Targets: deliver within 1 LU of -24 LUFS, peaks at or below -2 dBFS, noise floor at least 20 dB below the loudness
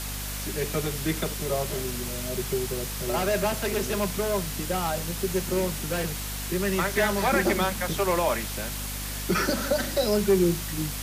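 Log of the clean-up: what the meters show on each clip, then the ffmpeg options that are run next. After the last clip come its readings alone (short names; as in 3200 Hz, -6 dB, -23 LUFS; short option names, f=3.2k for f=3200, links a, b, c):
hum 50 Hz; harmonics up to 250 Hz; hum level -34 dBFS; noise floor -33 dBFS; noise floor target -47 dBFS; loudness -27.0 LUFS; peak -11.5 dBFS; loudness target -24.0 LUFS
-> -af "bandreject=f=50:t=h:w=6,bandreject=f=100:t=h:w=6,bandreject=f=150:t=h:w=6,bandreject=f=200:t=h:w=6,bandreject=f=250:t=h:w=6"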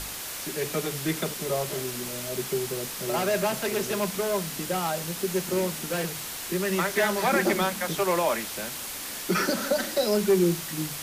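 hum none; noise floor -36 dBFS; noise floor target -47 dBFS
-> -af "afftdn=nr=11:nf=-36"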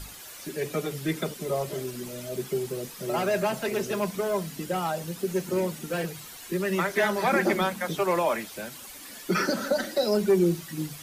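noise floor -44 dBFS; noise floor target -48 dBFS
-> -af "afftdn=nr=6:nf=-44"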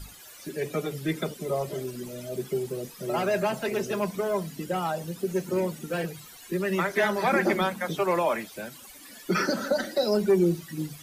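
noise floor -48 dBFS; loudness -28.0 LUFS; peak -12.5 dBFS; loudness target -24.0 LUFS
-> -af "volume=4dB"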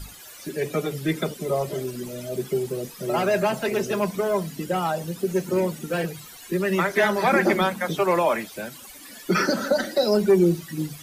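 loudness -24.0 LUFS; peak -8.5 dBFS; noise floor -44 dBFS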